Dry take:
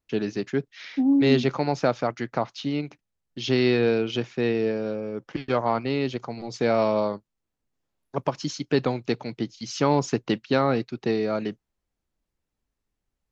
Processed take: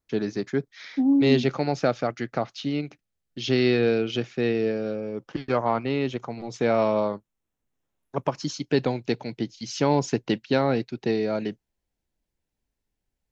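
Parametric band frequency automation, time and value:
parametric band −9.5 dB 0.25 octaves
0:00.97 2,800 Hz
0:01.52 970 Hz
0:04.99 970 Hz
0:05.66 4,600 Hz
0:08.28 4,600 Hz
0:08.69 1,200 Hz

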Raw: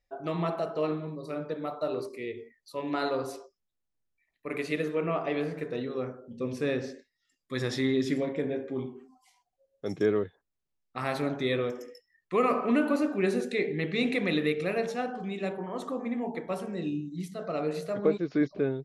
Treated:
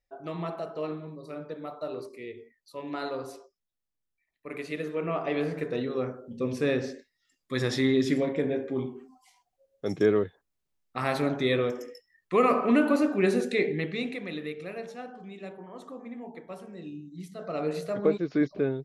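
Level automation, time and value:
0:04.72 −4 dB
0:05.53 +3 dB
0:13.69 +3 dB
0:14.20 −8.5 dB
0:16.94 −8.5 dB
0:17.67 +1 dB

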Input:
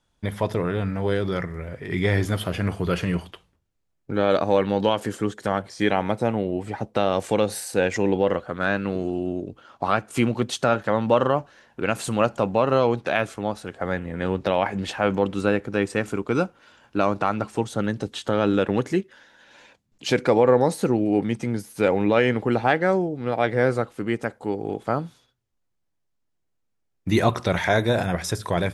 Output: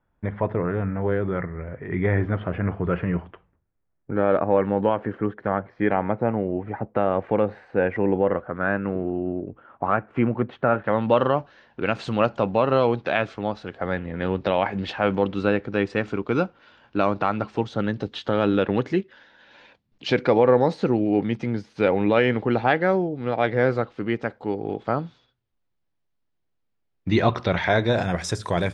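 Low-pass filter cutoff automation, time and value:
low-pass filter 24 dB per octave
0:10.70 2,000 Hz
0:11.14 4,600 Hz
0:27.76 4,600 Hz
0:28.16 8,600 Hz

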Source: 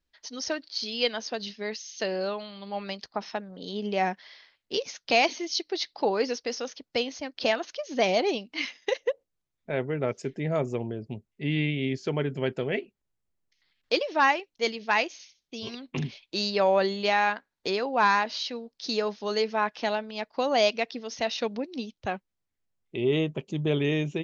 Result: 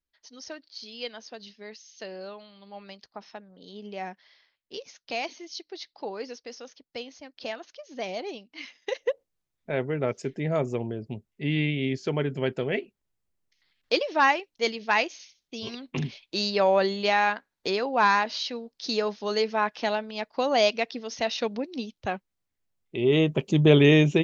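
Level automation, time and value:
0:08.63 −9.5 dB
0:09.11 +1 dB
0:22.96 +1 dB
0:23.50 +9 dB

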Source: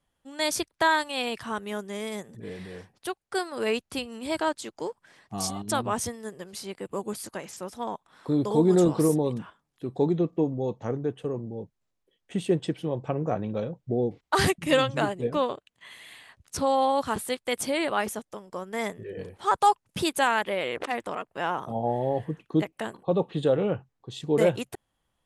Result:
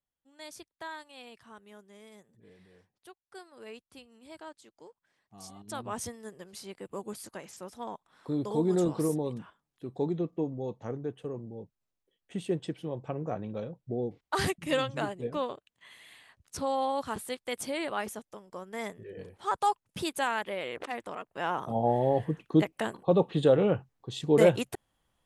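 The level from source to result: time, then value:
0:05.35 −19 dB
0:06.02 −6.5 dB
0:21.16 −6.5 dB
0:21.80 +1 dB

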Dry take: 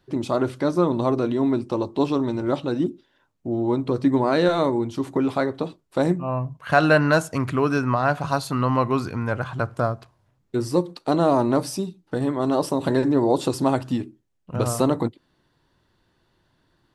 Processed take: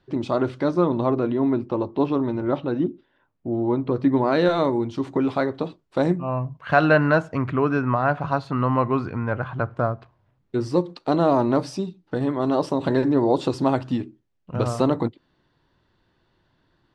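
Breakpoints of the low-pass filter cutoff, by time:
0:00.60 4,500 Hz
0:01.25 2,500 Hz
0:03.86 2,500 Hz
0:04.50 5,000 Hz
0:06.41 5,000 Hz
0:07.19 2,400 Hz
0:09.90 2,400 Hz
0:10.65 4,700 Hz

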